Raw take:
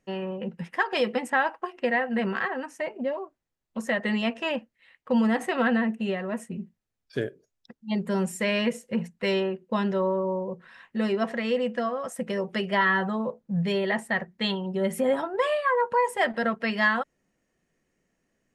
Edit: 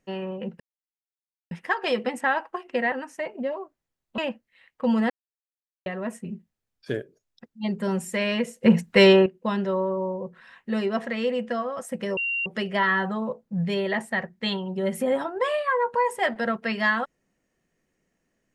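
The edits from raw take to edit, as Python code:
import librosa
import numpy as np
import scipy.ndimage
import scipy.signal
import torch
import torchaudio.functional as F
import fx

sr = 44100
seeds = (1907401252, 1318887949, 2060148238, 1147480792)

y = fx.edit(x, sr, fx.insert_silence(at_s=0.6, length_s=0.91),
    fx.cut(start_s=2.01, length_s=0.52),
    fx.cut(start_s=3.79, length_s=0.66),
    fx.silence(start_s=5.37, length_s=0.76),
    fx.clip_gain(start_s=8.9, length_s=0.63, db=11.0),
    fx.insert_tone(at_s=12.44, length_s=0.29, hz=2760.0, db=-24.0), tone=tone)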